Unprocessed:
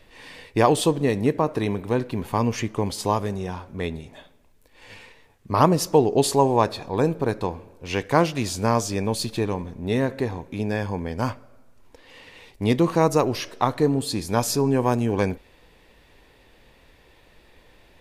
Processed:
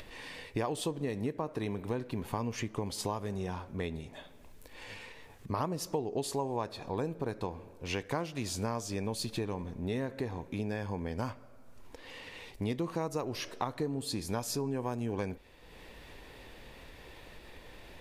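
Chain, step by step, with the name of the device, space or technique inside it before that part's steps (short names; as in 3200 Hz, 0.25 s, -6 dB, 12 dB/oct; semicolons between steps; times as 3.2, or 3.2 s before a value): upward and downward compression (upward compressor, threshold -37 dBFS; compressor 4:1, threshold -28 dBFS, peak gain reduction 14.5 dB); gain -4 dB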